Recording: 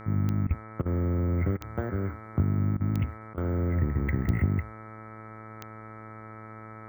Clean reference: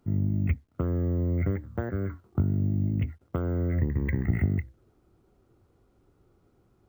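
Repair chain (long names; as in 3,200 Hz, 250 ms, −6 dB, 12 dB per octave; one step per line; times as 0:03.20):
click removal
hum removal 109.6 Hz, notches 21
notch filter 1,300 Hz, Q 30
repair the gap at 0:00.47/0:00.82/0:01.57/0:02.77/0:03.34, 35 ms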